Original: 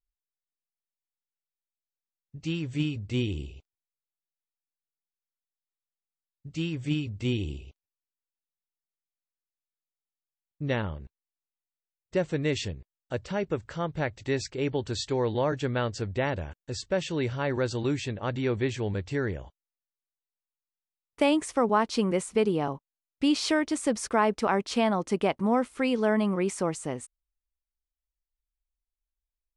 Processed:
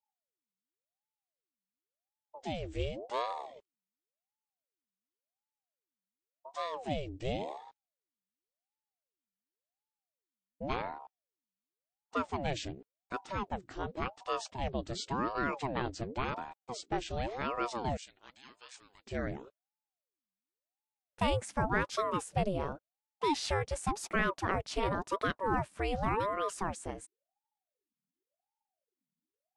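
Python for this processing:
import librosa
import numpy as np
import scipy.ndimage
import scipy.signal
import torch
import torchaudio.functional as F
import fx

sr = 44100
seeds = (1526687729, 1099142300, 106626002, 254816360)

y = fx.differentiator(x, sr, at=(17.97, 19.07))
y = fx.ring_lfo(y, sr, carrier_hz=530.0, swing_pct=65, hz=0.91)
y = F.gain(torch.from_numpy(y), -4.0).numpy()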